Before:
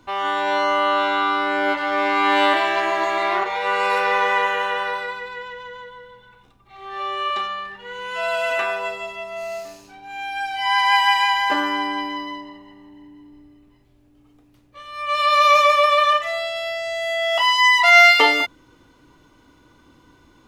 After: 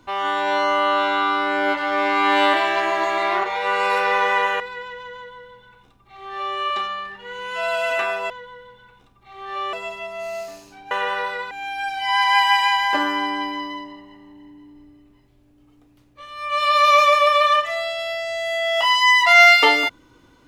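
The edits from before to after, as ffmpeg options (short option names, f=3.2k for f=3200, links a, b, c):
-filter_complex "[0:a]asplit=6[a][b][c][d][e][f];[a]atrim=end=4.602[g];[b]atrim=start=5.198:end=8.902[h];[c]atrim=start=5.738:end=7.172[i];[d]atrim=start=8.898:end=10.082[j];[e]atrim=start=4.598:end=5.202[k];[f]atrim=start=10.078[l];[g][h]acrossfade=d=0.004:c1=hsin:c2=hsin[m];[m][i]acrossfade=d=0.004:c1=hsin:c2=hsin[n];[n][j]acrossfade=d=0.004:c1=hsin:c2=hsin[o];[o][k]acrossfade=d=0.004:c1=hsin:c2=hsin[p];[p][l]acrossfade=d=0.004:c1=hsin:c2=hsin"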